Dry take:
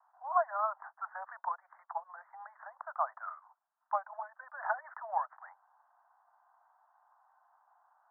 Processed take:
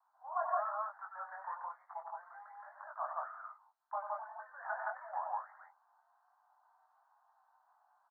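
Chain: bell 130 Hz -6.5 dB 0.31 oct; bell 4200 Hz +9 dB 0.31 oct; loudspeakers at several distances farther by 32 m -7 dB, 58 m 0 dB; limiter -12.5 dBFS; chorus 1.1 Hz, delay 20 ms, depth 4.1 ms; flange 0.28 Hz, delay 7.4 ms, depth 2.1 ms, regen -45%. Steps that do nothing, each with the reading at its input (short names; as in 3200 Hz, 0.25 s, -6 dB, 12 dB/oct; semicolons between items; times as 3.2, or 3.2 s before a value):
bell 130 Hz: input band starts at 510 Hz; bell 4200 Hz: input band ends at 1900 Hz; limiter -12.5 dBFS: input peak -15.5 dBFS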